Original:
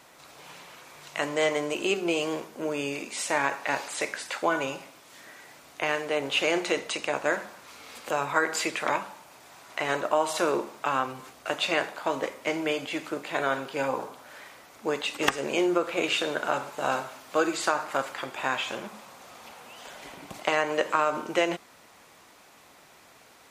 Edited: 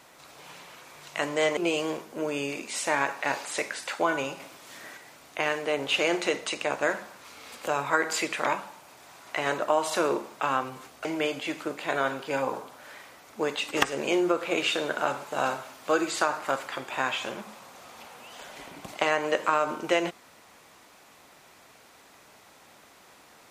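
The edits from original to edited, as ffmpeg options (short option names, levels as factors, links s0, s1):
-filter_complex "[0:a]asplit=5[s0][s1][s2][s3][s4];[s0]atrim=end=1.572[s5];[s1]atrim=start=1.998:end=4.832[s6];[s2]atrim=start=4.828:end=5.402,asetpts=PTS-STARTPTS,volume=1.58[s7];[s3]atrim=start=5.398:end=11.482[s8];[s4]atrim=start=12.508[s9];[s5][s6]acrossfade=d=0.004:c1=hsin:c2=hsin[s10];[s10][s7]acrossfade=d=0.004:c1=hsin:c2=hsin[s11];[s11][s8]acrossfade=d=0.004:c1=hsin:c2=hsin[s12];[s12][s9]acrossfade=d=0.004:c1=hsin:c2=hsin"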